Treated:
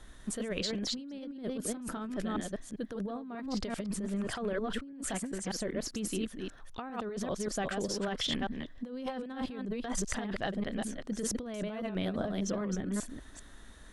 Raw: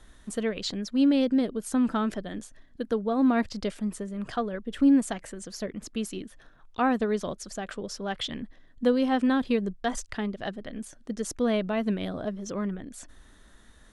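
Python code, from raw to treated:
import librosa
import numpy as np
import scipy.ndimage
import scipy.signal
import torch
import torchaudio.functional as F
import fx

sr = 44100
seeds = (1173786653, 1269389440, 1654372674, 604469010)

y = fx.reverse_delay(x, sr, ms=197, wet_db=-4.5)
y = fx.over_compress(y, sr, threshold_db=-32.0, ratio=-1.0)
y = F.gain(torch.from_numpy(y), -4.0).numpy()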